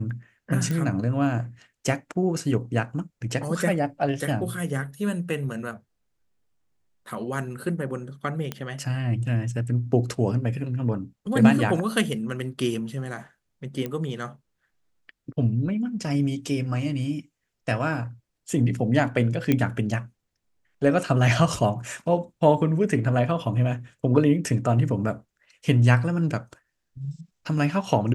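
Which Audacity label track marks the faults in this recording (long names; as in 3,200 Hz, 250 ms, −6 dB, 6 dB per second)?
0.710000	0.710000	click −16 dBFS
8.520000	8.520000	click −15 dBFS
13.860000	13.860000	click −17 dBFS
19.520000	19.520000	click −9 dBFS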